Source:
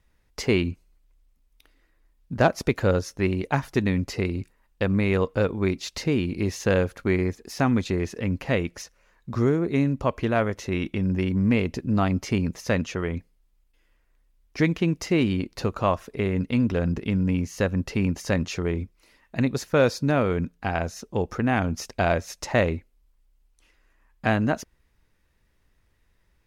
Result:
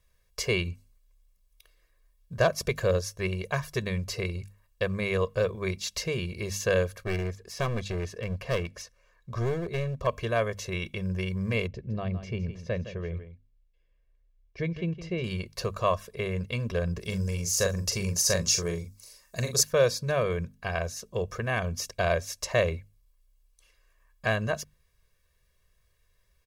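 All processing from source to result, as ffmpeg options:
-filter_complex "[0:a]asettb=1/sr,asplit=3[a][b][c];[a]atrim=end=7.034[d];[b]atrim=start=7.03:end=10.07,asetpts=PTS-STARTPTS,afade=t=in:d=0.004:c=qsin,afade=t=out:st=3.036:d=0.004:c=qsin,aemphasis=mode=reproduction:type=cd,aeval=exprs='clip(val(0),-1,0.0596)':c=same[e];[c]atrim=start=10.066[f];[d][e]acrossfade=d=0.004:c1=hsin:c2=qsin[g];[g][f]acrossfade=d=0.004:c1=qsin:c2=hsin,asettb=1/sr,asplit=3[h][i][j];[h]atrim=end=11.674[k];[i]atrim=start=11.67:end=15.24,asetpts=PTS-STARTPTS,afade=t=in:d=0.004:c=qsin,afade=t=out:st=3.566:d=0.004:c=qsin,lowpass=2.2k,equalizer=f=1.2k:w=0.81:g=-11,aecho=1:1:162:0.251,atrim=end_sample=157437[l];[j]atrim=start=15.236[m];[k][l]acrossfade=d=0.004:c1=hsin:c2=qsin[n];[n][m]acrossfade=d=0.004:c1=qsin:c2=hsin,asettb=1/sr,asplit=3[o][p][q];[o]atrim=end=17.004[r];[p]atrim=start=17:end=19.63,asetpts=PTS-STARTPTS,afade=t=in:d=0.004:c=qsin,afade=t=out:st=2.626:d=0.004:c=qsin,highshelf=f=4.1k:t=q:w=1.5:g=10.5,asplit=2[s][t];[t]adelay=41,volume=-6.5dB[u];[s][u]amix=inputs=2:normalize=0,atrim=end_sample=115983[v];[q]atrim=start=19.626[w];[r][v]acrossfade=d=0.004:c1=hsin:c2=qsin[x];[x][w]acrossfade=d=0.004:c1=qsin:c2=hsin,highshelf=f=3.5k:g=9,bandreject=f=50:t=h:w=6,bandreject=f=100:t=h:w=6,bandreject=f=150:t=h:w=6,bandreject=f=200:t=h:w=6,bandreject=f=250:t=h:w=6,aecho=1:1:1.8:1,volume=-7.5dB"

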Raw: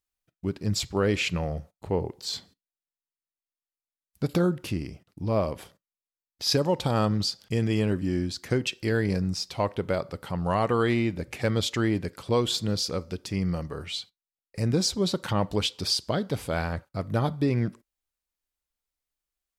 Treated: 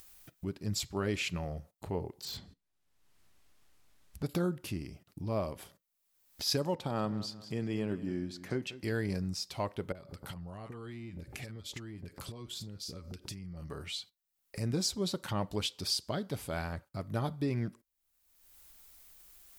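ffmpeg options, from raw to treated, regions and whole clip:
-filter_complex "[0:a]asettb=1/sr,asplit=3[a][b][c];[a]atrim=end=2.254[d];[b]atrim=start=2.25:end=4.23,asetpts=PTS-STARTPTS,afade=t=in:d=0.004:c=qsin,afade=t=out:st=1.976:d=0.004:c=qsin,aemphasis=mode=reproduction:type=bsi,asoftclip=type=hard:threshold=-33.5dB[e];[c]atrim=start=4.226[f];[d][e]acrossfade=d=0.004:c1=hsin:c2=qsin[g];[g][f]acrossfade=d=0.004:c1=qsin:c2=hsin,asettb=1/sr,asplit=3[h][i][j];[h]atrim=end=6.754[k];[i]atrim=start=6.75:end=8.84,asetpts=PTS-STARTPTS,afade=t=in:d=0.004:c=qsin,afade=t=out:st=2.086:d=0.004:c=qsin,highpass=130,highshelf=f=3.7k:g=-11,aecho=1:1:188|376|564:0.158|0.0444|0.0124,atrim=end_sample=92169[l];[j]atrim=start=8.836[m];[k][l]acrossfade=d=0.004:c1=hsin:c2=qsin[n];[n][m]acrossfade=d=0.004:c1=qsin:c2=hsin,asettb=1/sr,asplit=3[o][p][q];[o]atrim=end=9.924[r];[p]atrim=start=9.92:end=13.7,asetpts=PTS-STARTPTS,afade=t=in:d=0.004:c=qsin,afade=t=out:st=3.776:d=0.004:c=qsin,lowshelf=f=150:g=8,acompressor=threshold=-35dB:ratio=12:attack=3.2:release=140:knee=1:detection=peak,acrossover=split=900[s][t];[t]adelay=30[u];[s][u]amix=inputs=2:normalize=0,atrim=end_sample=166698[v];[q]atrim=start=13.696[w];[r][v]acrossfade=d=0.004:c1=hsin:c2=qsin[x];[x][w]acrossfade=d=0.004:c1=qsin:c2=hsin,bandreject=f=490:w=12,acompressor=mode=upward:threshold=-29dB:ratio=2.5,highshelf=f=10k:g=10.5,volume=-8dB"

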